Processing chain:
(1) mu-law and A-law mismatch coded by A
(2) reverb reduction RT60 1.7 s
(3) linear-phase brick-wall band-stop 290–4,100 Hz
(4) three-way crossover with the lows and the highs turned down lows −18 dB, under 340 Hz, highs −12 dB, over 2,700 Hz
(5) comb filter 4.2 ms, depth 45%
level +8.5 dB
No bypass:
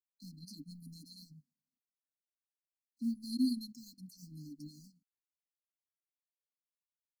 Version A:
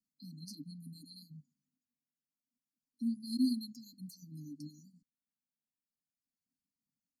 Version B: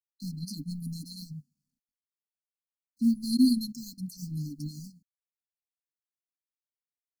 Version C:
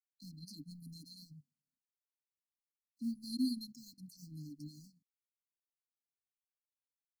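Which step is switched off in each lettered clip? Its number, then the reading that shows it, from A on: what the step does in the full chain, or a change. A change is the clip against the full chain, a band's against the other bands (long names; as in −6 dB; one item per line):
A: 1, distortion level −21 dB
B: 4, 125 Hz band +4.5 dB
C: 5, 250 Hz band −3.0 dB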